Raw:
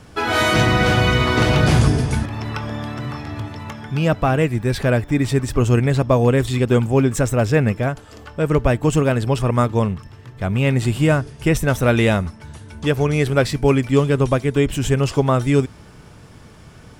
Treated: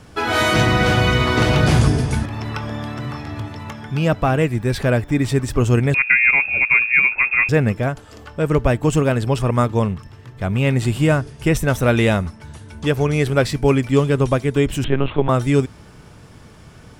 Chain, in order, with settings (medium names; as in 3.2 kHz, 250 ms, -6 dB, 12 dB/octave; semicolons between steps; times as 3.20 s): 5.94–7.49 s: frequency inversion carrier 2.6 kHz; 14.84–15.29 s: LPC vocoder at 8 kHz pitch kept